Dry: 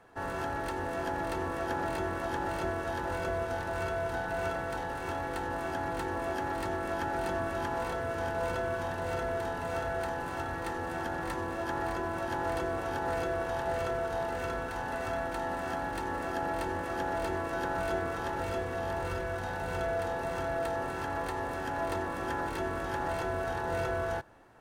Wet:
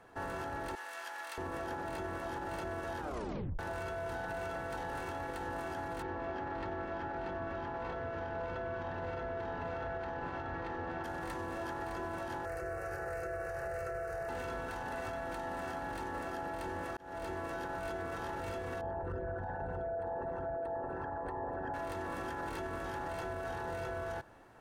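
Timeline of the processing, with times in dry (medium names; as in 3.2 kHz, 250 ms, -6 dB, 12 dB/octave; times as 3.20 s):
0.75–1.38 s: Bessel high-pass 1.8 kHz
3.00 s: tape stop 0.59 s
6.02–11.04 s: distance through air 210 m
12.45–14.29 s: static phaser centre 930 Hz, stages 6
16.97–17.53 s: fade in
18.81–21.74 s: resonances exaggerated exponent 2
whole clip: peak limiter -31.5 dBFS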